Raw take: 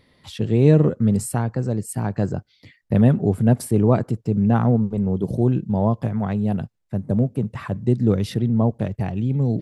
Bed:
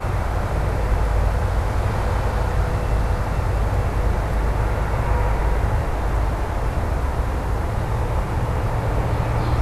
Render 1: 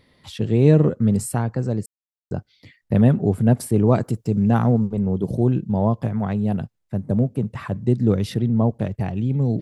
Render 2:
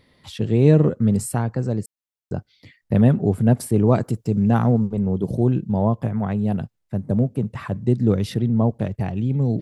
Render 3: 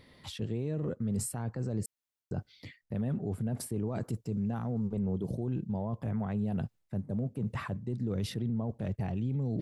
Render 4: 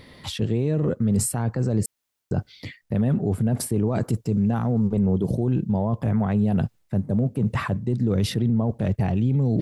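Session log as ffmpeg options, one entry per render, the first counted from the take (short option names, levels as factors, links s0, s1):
-filter_complex "[0:a]asettb=1/sr,asplit=3[s0][s1][s2];[s0]atrim=end=3.874[s3];[s1]atrim=start=3.87:end=4.88,asetpts=PTS-STARTPTS,afade=t=in:d=0.004:c=qsin,afade=t=out:st=1.006:d=0.004:c=qsin,highshelf=f=5200:g=11[s4];[s2]atrim=start=4.876[s5];[s3][s4]acrossfade=d=0.004:c1=hsin:c2=qsin[s6];[s6][s5]acrossfade=d=0.004:c1=qsin:c2=hsin,asplit=3[s7][s8][s9];[s7]atrim=end=1.86,asetpts=PTS-STARTPTS,afade=t=out:st=1.856:d=0.004:c=hsin[s10];[s8]atrim=start=1.86:end=2.31,asetpts=PTS-STARTPTS,volume=0[s11];[s9]atrim=start=2.31,asetpts=PTS-STARTPTS,afade=t=in:d=0.004:c=hsin[s12];[s10][s11][s12]concat=n=3:v=0:a=1"
-filter_complex "[0:a]asettb=1/sr,asplit=3[s0][s1][s2];[s0]atrim=end=5.824[s3];[s1]atrim=start=5.82:end=6.39,asetpts=PTS-STARTPTS,afade=t=in:d=0.004:c=qsin,afade=t=out:st=0.566:d=0.004:c=qsin,equalizer=f=4600:w=1.5:g=-5[s4];[s2]atrim=start=6.386[s5];[s3][s4]acrossfade=d=0.004:c1=hsin:c2=qsin[s6];[s6][s5]acrossfade=d=0.004:c1=qsin:c2=hsin"
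-af "areverse,acompressor=threshold=0.0447:ratio=6,areverse,alimiter=level_in=1.19:limit=0.0631:level=0:latency=1:release=25,volume=0.841"
-af "volume=3.55"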